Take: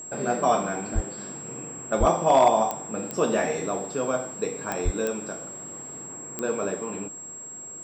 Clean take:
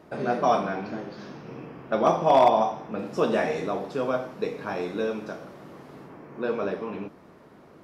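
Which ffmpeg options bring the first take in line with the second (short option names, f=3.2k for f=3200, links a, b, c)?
-filter_complex "[0:a]adeclick=t=4,bandreject=f=7.6k:w=30,asplit=3[a][b][c];[a]afade=t=out:st=0.94:d=0.02[d];[b]highpass=f=140:w=0.5412,highpass=f=140:w=1.3066,afade=t=in:st=0.94:d=0.02,afade=t=out:st=1.06:d=0.02[e];[c]afade=t=in:st=1.06:d=0.02[f];[d][e][f]amix=inputs=3:normalize=0,asplit=3[g][h][i];[g]afade=t=out:st=1.99:d=0.02[j];[h]highpass=f=140:w=0.5412,highpass=f=140:w=1.3066,afade=t=in:st=1.99:d=0.02,afade=t=out:st=2.11:d=0.02[k];[i]afade=t=in:st=2.11:d=0.02[l];[j][k][l]amix=inputs=3:normalize=0,asplit=3[m][n][o];[m]afade=t=out:st=4.84:d=0.02[p];[n]highpass=f=140:w=0.5412,highpass=f=140:w=1.3066,afade=t=in:st=4.84:d=0.02,afade=t=out:st=4.96:d=0.02[q];[o]afade=t=in:st=4.96:d=0.02[r];[p][q][r]amix=inputs=3:normalize=0"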